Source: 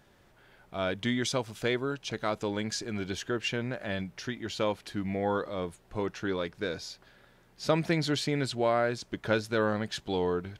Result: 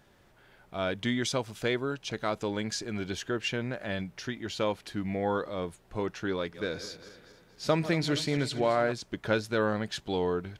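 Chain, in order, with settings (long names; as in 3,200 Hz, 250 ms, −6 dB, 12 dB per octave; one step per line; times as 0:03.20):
0:06.39–0:08.92: feedback delay that plays each chunk backwards 117 ms, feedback 68%, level −13.5 dB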